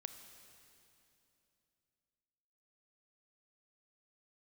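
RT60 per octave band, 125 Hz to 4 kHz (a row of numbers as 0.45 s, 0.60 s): 3.5 s, 3.4 s, 3.1 s, 2.7 s, 2.7 s, 2.7 s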